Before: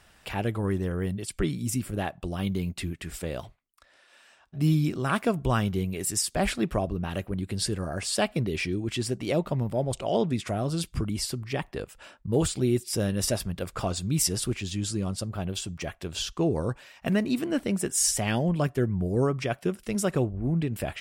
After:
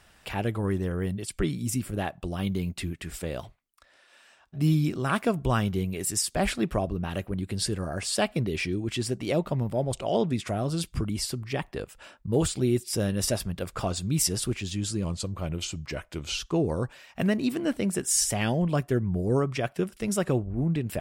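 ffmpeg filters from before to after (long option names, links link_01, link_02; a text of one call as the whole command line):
ffmpeg -i in.wav -filter_complex "[0:a]asplit=3[link_01][link_02][link_03];[link_01]atrim=end=15.044[link_04];[link_02]atrim=start=15.04:end=16.25,asetpts=PTS-STARTPTS,asetrate=39690,aresample=44100[link_05];[link_03]atrim=start=16.246[link_06];[link_04][link_05]acrossfade=duration=0.004:curve1=hsin:curve2=hsin[link_07];[link_07][link_06]acrossfade=duration=0.004:curve1=hsin:curve2=hsin" out.wav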